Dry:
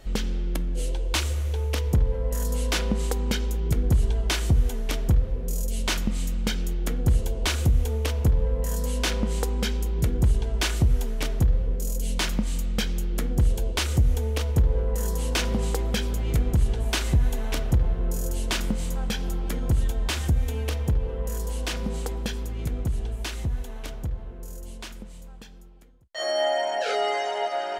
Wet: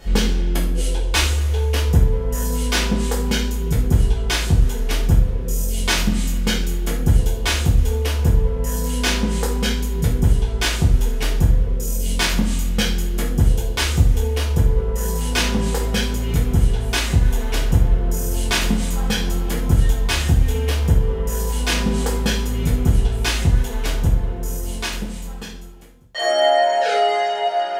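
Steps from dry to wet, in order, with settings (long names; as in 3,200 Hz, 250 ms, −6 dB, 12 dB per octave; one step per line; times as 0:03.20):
coupled-rooms reverb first 0.44 s, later 2 s, from −28 dB, DRR −6 dB
speech leveller 2 s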